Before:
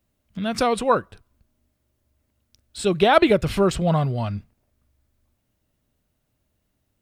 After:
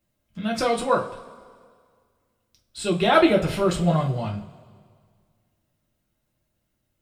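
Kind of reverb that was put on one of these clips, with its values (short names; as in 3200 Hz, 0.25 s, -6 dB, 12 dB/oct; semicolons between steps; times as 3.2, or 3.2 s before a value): two-slope reverb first 0.25 s, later 1.9 s, from -20 dB, DRR -1.5 dB; gain -5 dB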